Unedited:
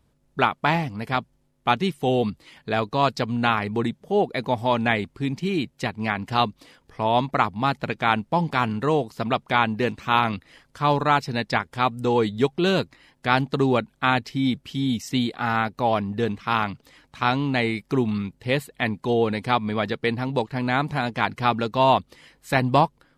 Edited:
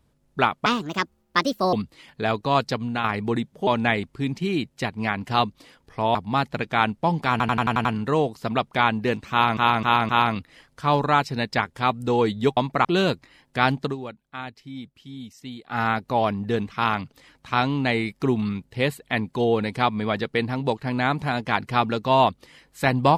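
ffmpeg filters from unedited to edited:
ffmpeg -i in.wav -filter_complex "[0:a]asplit=19[link_01][link_02][link_03][link_04][link_05][link_06][link_07][link_08][link_09][link_10][link_11][link_12][link_13][link_14][link_15][link_16][link_17][link_18][link_19];[link_01]atrim=end=0.664[link_20];[link_02]atrim=start=0.66:end=2.21,asetpts=PTS-STARTPTS,asetrate=63945,aresample=44100,atrim=end_sample=47141,asetpts=PTS-STARTPTS[link_21];[link_03]atrim=start=2.206:end=3.52,asetpts=PTS-STARTPTS,afade=type=out:start_time=0.954:duration=0.36:silence=0.446684[link_22];[link_04]atrim=start=3.52:end=4.152,asetpts=PTS-STARTPTS,afade=type=in:duration=0.004:curve=hsin:silence=0.446684[link_23];[link_05]atrim=start=4.678:end=7.162[link_24];[link_06]atrim=start=7.438:end=8.692[link_25];[link_07]atrim=start=8.598:end=8.692[link_26];[link_08]atrim=start=8.598:end=8.692[link_27];[link_09]atrim=start=8.598:end=8.692[link_28];[link_10]atrim=start=8.598:end=8.692[link_29];[link_11]atrim=start=8.598:end=8.692[link_30];[link_12]atrim=start=8.598:end=10.322[link_31];[link_13]atrim=start=10.058:end=10.322[link_32];[link_14]atrim=start=10.058:end=10.322[link_33];[link_15]atrim=start=10.058:end=12.542[link_34];[link_16]atrim=start=7.158:end=7.442[link_35];[link_17]atrim=start=12.538:end=13.65,asetpts=PTS-STARTPTS,afade=type=out:start_time=0.982:duration=0.13:silence=0.199526[link_36];[link_18]atrim=start=13.65:end=15.35,asetpts=PTS-STARTPTS,volume=-14dB[link_37];[link_19]atrim=start=15.35,asetpts=PTS-STARTPTS,afade=type=in:duration=0.13:silence=0.199526[link_38];[link_20][link_21]acrossfade=duration=0.004:curve1=hsin:curve2=hsin[link_39];[link_22][link_23]concat=n=2:v=0:a=1[link_40];[link_39][link_40]acrossfade=duration=0.004:curve1=hsin:curve2=hsin[link_41];[link_41][link_24]acrossfade=duration=0.004:curve1=hsin:curve2=hsin[link_42];[link_42][link_25]acrossfade=duration=0.004:curve1=hsin:curve2=hsin[link_43];[link_43][link_26]acrossfade=duration=0.004:curve1=hsin:curve2=hsin[link_44];[link_44][link_27]acrossfade=duration=0.004:curve1=hsin:curve2=hsin[link_45];[link_45][link_28]acrossfade=duration=0.004:curve1=hsin:curve2=hsin[link_46];[link_46][link_29]acrossfade=duration=0.004:curve1=hsin:curve2=hsin[link_47];[link_47][link_30]acrossfade=duration=0.004:curve1=hsin:curve2=hsin[link_48];[link_48][link_31]acrossfade=duration=0.004:curve1=hsin:curve2=hsin[link_49];[link_49][link_32]acrossfade=duration=0.004:curve1=hsin:curve2=hsin[link_50];[link_50][link_33]acrossfade=duration=0.004:curve1=hsin:curve2=hsin[link_51];[link_51][link_34]acrossfade=duration=0.004:curve1=hsin:curve2=hsin[link_52];[link_52][link_35]acrossfade=duration=0.004:curve1=hsin:curve2=hsin[link_53];[link_36][link_37][link_38]concat=n=3:v=0:a=1[link_54];[link_53][link_54]acrossfade=duration=0.004:curve1=hsin:curve2=hsin" out.wav

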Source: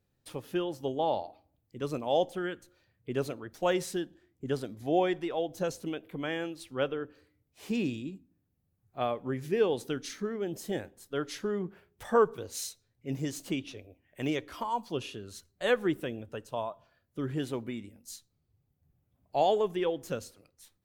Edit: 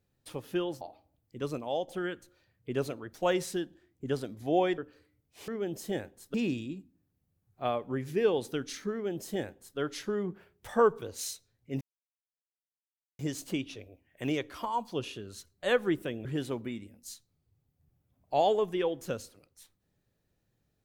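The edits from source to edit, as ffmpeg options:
ffmpeg -i in.wav -filter_complex "[0:a]asplit=8[link_01][link_02][link_03][link_04][link_05][link_06][link_07][link_08];[link_01]atrim=end=0.812[link_09];[link_02]atrim=start=1.208:end=2.28,asetpts=PTS-STARTPTS,afade=type=out:start_time=0.622:duration=0.45:silence=0.354813[link_10];[link_03]atrim=start=2.28:end=5.182,asetpts=PTS-STARTPTS,afade=type=in:duration=0.004:curve=hsin:silence=0.354813[link_11];[link_04]atrim=start=6.998:end=7.702[link_12];[link_05]atrim=start=10.278:end=11.142[link_13];[link_06]atrim=start=7.698:end=13.17,asetpts=PTS-STARTPTS,afade=type=out:start_time=5.468:duration=0.004:curve=hsin,apad=pad_dur=1.38[link_14];[link_07]atrim=start=13.17:end=16.232,asetpts=PTS-STARTPTS,afade=type=in:duration=0.004:curve=hsin[link_15];[link_08]atrim=start=17.268[link_16];[link_10][link_11]concat=n=2:v=0:a=1[link_17];[link_09][link_17]acrossfade=duration=0.004:curve1=hsin:curve2=hsin[link_18];[link_18][link_12]acrossfade=duration=0.004:curve1=hsin:curve2=hsin[link_19];[link_19][link_13]acrossfade=duration=0.004:curve1=hsin:curve2=hsin[link_20];[link_14][link_15]concat=n=2:v=0:a=1[link_21];[link_20][link_21]acrossfade=duration=0.004:curve1=hsin:curve2=hsin[link_22];[link_22][link_16]acrossfade=duration=0.004:curve1=hsin:curve2=hsin" out.wav

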